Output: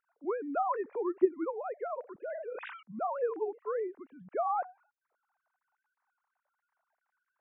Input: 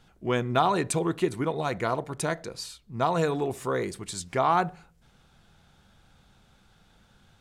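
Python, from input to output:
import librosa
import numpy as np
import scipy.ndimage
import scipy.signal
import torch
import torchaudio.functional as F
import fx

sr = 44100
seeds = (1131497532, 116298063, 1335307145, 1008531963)

y = fx.sine_speech(x, sr)
y = scipy.ndimage.gaussian_filter1d(y, 5.7, mode='constant')
y = fx.sustainer(y, sr, db_per_s=34.0, at=(2.2, 2.83))
y = y * librosa.db_to_amplitude(-5.5)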